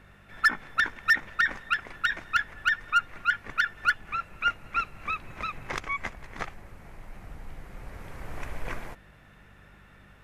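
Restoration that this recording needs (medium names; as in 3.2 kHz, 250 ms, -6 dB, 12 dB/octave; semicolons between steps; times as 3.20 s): de-hum 49.3 Hz, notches 4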